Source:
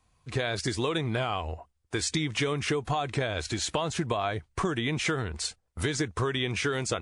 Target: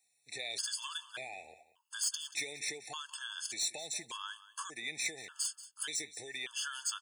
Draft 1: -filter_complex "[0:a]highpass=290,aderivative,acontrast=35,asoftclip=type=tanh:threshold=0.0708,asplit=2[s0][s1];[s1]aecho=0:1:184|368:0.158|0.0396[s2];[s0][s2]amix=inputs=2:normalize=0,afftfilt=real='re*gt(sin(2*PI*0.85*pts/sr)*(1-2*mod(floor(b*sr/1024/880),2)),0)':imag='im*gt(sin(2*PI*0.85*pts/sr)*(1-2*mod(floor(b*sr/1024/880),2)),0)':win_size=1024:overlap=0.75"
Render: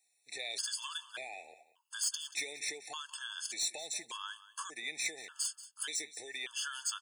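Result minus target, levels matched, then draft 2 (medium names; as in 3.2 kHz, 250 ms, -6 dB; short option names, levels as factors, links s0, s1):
125 Hz band -9.5 dB
-filter_complex "[0:a]highpass=120,aderivative,acontrast=35,asoftclip=type=tanh:threshold=0.0708,asplit=2[s0][s1];[s1]aecho=0:1:184|368:0.158|0.0396[s2];[s0][s2]amix=inputs=2:normalize=0,afftfilt=real='re*gt(sin(2*PI*0.85*pts/sr)*(1-2*mod(floor(b*sr/1024/880),2)),0)':imag='im*gt(sin(2*PI*0.85*pts/sr)*(1-2*mod(floor(b*sr/1024/880),2)),0)':win_size=1024:overlap=0.75"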